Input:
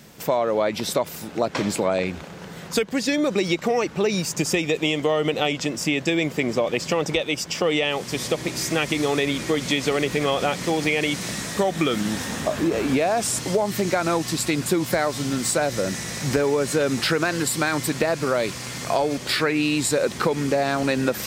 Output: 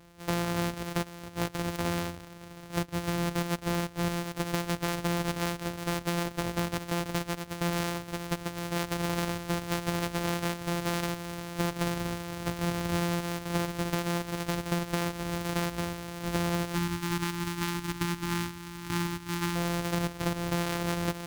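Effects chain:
samples sorted by size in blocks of 256 samples
gain on a spectral selection 0:16.75–0:19.56, 380–780 Hz −21 dB
level −8.5 dB

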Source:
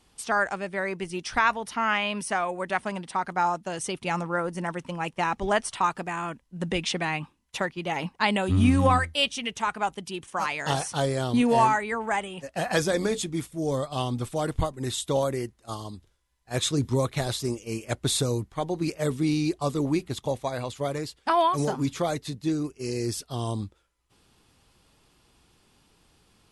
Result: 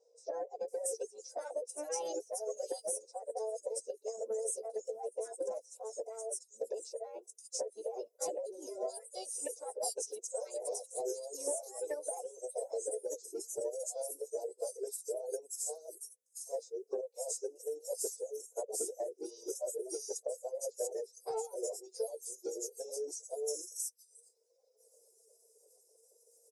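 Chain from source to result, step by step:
every overlapping window played backwards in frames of 35 ms
Chebyshev high-pass filter 380 Hz, order 6
reverb reduction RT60 1.4 s
inverse Chebyshev band-stop filter 900–3,600 Hz, stop band 40 dB
downward compressor 16 to 1, threshold −46 dBFS, peak gain reduction 22 dB
phase-vocoder pitch shift with formants kept +4.5 semitones
multiband delay without the direct sound lows, highs 680 ms, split 4,400 Hz
level +12.5 dB

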